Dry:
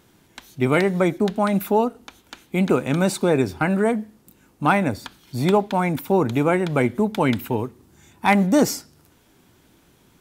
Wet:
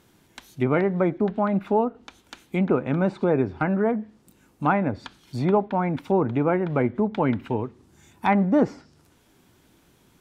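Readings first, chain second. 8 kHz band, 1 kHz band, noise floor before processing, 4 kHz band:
under -20 dB, -3.0 dB, -58 dBFS, -11.5 dB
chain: low-pass that closes with the level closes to 1.6 kHz, closed at -17 dBFS; trim -2.5 dB

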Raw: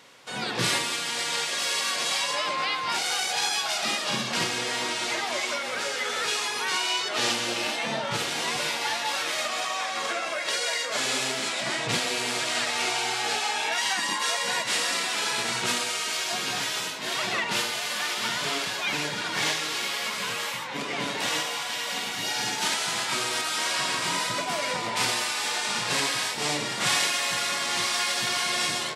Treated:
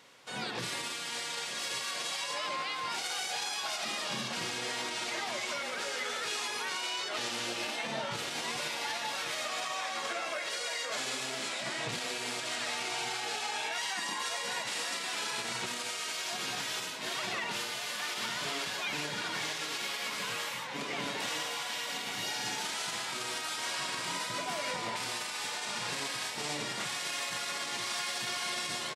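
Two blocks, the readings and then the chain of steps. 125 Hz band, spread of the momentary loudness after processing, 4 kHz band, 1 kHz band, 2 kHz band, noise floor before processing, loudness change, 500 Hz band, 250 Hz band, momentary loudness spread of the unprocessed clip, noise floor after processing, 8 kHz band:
-8.5 dB, 2 LU, -8.0 dB, -7.5 dB, -8.0 dB, -32 dBFS, -8.0 dB, -7.5 dB, -8.0 dB, 4 LU, -38 dBFS, -8.5 dB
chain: peak limiter -20 dBFS, peak gain reduction 9 dB; delay 1143 ms -14 dB; trim -5.5 dB

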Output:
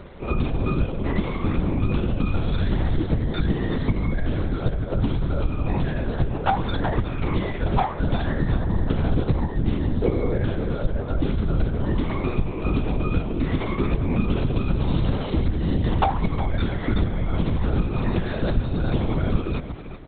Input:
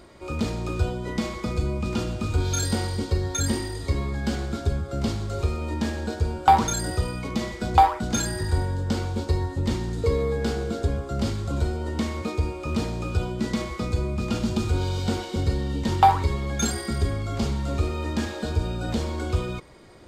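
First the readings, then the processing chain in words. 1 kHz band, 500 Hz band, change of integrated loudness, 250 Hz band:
-5.0 dB, +1.5 dB, +1.0 dB, +3.0 dB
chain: bass shelf 240 Hz +6.5 dB; compression 5:1, threshold -24 dBFS, peak gain reduction 13 dB; delay 369 ms -11.5 dB; LPC vocoder at 8 kHz whisper; trim +5 dB

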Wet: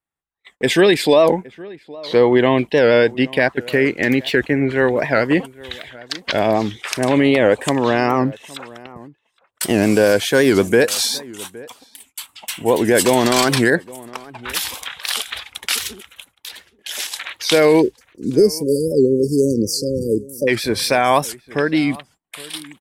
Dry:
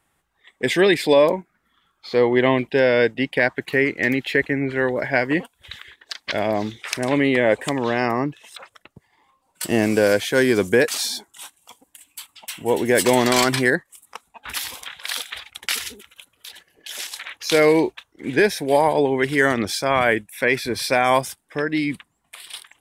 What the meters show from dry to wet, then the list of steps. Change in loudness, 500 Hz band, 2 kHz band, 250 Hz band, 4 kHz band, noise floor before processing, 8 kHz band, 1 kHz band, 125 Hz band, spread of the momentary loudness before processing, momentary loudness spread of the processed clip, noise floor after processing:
+3.0 dB, +3.5 dB, +0.5 dB, +4.5 dB, +4.5 dB, -70 dBFS, +4.5 dB, +2.0 dB, +5.0 dB, 17 LU, 19 LU, -66 dBFS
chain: spectral selection erased 17.82–20.49 s, 550–4400 Hz; gate -53 dBFS, range -27 dB; dynamic bell 2 kHz, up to -5 dB, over -38 dBFS, Q 3.9; peak limiter -9 dBFS, peak gain reduction 4 dB; vibrato 3.6 Hz 28 cents; echo from a far wall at 140 m, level -21 dB; warped record 78 rpm, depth 160 cents; trim +5.5 dB

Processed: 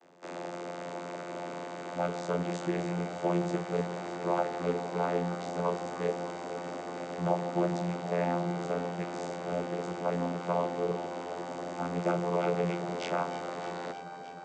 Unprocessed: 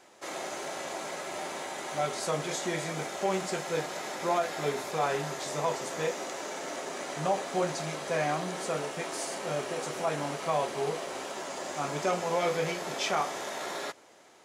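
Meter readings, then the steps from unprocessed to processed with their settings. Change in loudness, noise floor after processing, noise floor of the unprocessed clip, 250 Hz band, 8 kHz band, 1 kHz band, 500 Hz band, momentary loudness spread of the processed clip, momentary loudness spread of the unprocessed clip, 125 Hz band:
-1.0 dB, -42 dBFS, -55 dBFS, +4.5 dB, -13.5 dB, -2.0 dB, -0.5 dB, 9 LU, 7 LU, +4.0 dB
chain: vocoder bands 16, saw 87.3 Hz; echo whose repeats swap between lows and highs 154 ms, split 830 Hz, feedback 89%, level -11 dB

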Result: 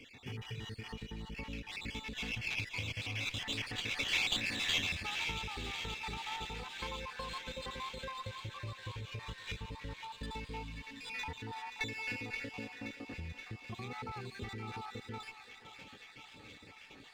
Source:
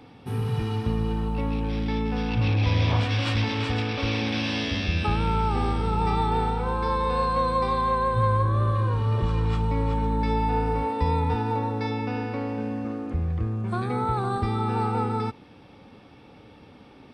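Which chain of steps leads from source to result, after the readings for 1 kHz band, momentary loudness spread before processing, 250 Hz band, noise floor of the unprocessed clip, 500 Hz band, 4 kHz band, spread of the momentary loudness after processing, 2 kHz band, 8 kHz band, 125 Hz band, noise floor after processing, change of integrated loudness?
-19.5 dB, 6 LU, -19.5 dB, -50 dBFS, -20.0 dB, -3.0 dB, 14 LU, -4.0 dB, no reading, -21.5 dB, -56 dBFS, -13.5 dB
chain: random holes in the spectrogram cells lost 56%; compression 4:1, threshold -35 dBFS, peak gain reduction 13.5 dB; spectral replace 10.65–11.06 s, 280–1600 Hz after; high-order bell 3 kHz +15 dB; on a send: thinning echo 526 ms, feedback 81%, high-pass 690 Hz, level -10 dB; on the sum: sliding maximum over 3 samples; trim -7.5 dB

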